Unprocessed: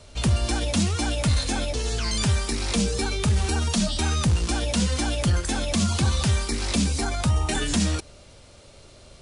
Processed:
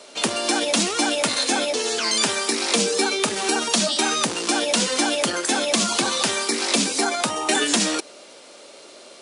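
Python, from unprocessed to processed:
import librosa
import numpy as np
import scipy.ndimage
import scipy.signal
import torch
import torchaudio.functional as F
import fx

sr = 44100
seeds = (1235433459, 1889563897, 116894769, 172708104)

y = scipy.signal.sosfilt(scipy.signal.butter(4, 280.0, 'highpass', fs=sr, output='sos'), x)
y = y * librosa.db_to_amplitude(7.5)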